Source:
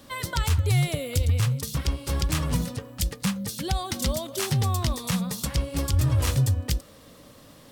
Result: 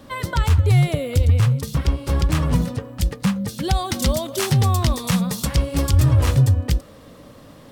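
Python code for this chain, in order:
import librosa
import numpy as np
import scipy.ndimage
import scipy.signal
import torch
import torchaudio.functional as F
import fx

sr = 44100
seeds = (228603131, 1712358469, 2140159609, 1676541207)

y = fx.high_shelf(x, sr, hz=2700.0, db=fx.steps((0.0, -10.5), (3.62, -3.5), (6.09, -9.5)))
y = y * librosa.db_to_amplitude(7.0)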